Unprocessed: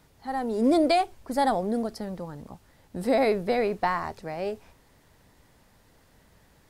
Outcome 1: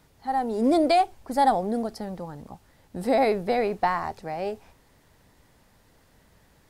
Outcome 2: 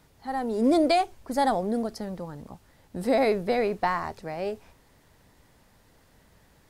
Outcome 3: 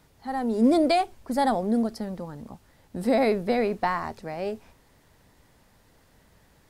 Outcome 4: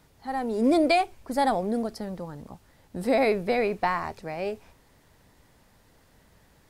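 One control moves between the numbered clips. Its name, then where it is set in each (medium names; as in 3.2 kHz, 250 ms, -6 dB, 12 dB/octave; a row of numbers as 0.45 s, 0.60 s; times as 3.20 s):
dynamic bell, frequency: 790 Hz, 6.4 kHz, 230 Hz, 2.4 kHz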